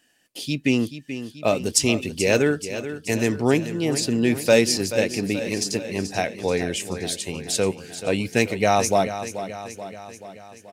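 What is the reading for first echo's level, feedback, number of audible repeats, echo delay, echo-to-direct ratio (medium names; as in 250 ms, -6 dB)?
-11.5 dB, 58%, 5, 432 ms, -9.5 dB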